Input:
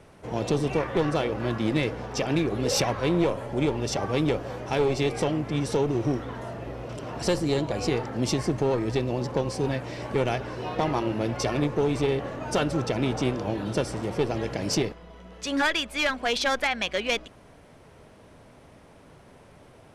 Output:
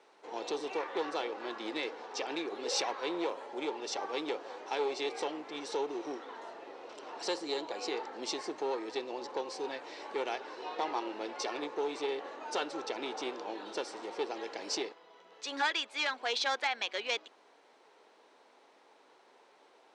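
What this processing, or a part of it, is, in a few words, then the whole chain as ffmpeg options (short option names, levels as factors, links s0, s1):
phone speaker on a table: -af "highpass=f=360:w=0.5412,highpass=f=360:w=1.3066,equalizer=f=610:t=q:w=4:g=-6,equalizer=f=860:t=q:w=4:g=5,equalizer=f=4000:t=q:w=4:g=6,lowpass=f=7800:w=0.5412,lowpass=f=7800:w=1.3066,volume=0.422"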